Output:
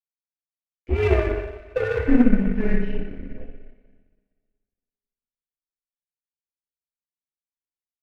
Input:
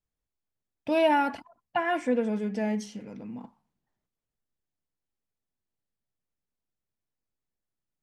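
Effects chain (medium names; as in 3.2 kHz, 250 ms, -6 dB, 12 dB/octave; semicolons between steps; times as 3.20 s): level rider gain up to 15 dB; Butterworth band-stop 1.2 kHz, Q 1.2; on a send: feedback delay 61 ms, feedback 57%, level -7 dB; on the sum: mistuned SSB -230 Hz 180–2800 Hz; in parallel at -4 dB: hard clipper -11 dBFS, distortion -12 dB; on the sum: two-slope reverb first 0.24 s, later 2.5 s, from -17 dB, DRR -7 dB; power-law waveshaper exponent 1.4; trim -13 dB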